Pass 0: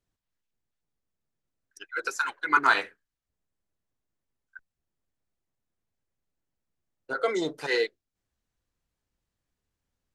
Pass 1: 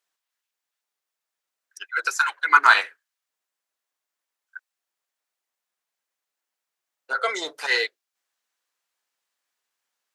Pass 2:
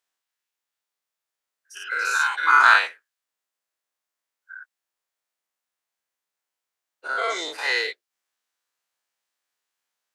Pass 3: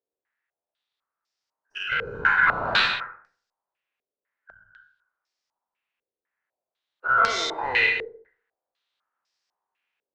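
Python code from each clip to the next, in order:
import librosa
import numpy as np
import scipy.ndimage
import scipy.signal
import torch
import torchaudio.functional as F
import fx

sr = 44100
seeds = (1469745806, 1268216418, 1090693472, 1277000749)

y1 = scipy.signal.sosfilt(scipy.signal.butter(2, 880.0, 'highpass', fs=sr, output='sos'), x)
y1 = F.gain(torch.from_numpy(y1), 7.5).numpy()
y2 = fx.spec_dilate(y1, sr, span_ms=120)
y2 = F.gain(torch.from_numpy(y2), -6.0).numpy()
y3 = fx.tube_stage(y2, sr, drive_db=20.0, bias=0.45)
y3 = fx.rev_plate(y3, sr, seeds[0], rt60_s=0.54, hf_ratio=0.6, predelay_ms=85, drr_db=3.5)
y3 = fx.filter_held_lowpass(y3, sr, hz=4.0, low_hz=460.0, high_hz=5200.0)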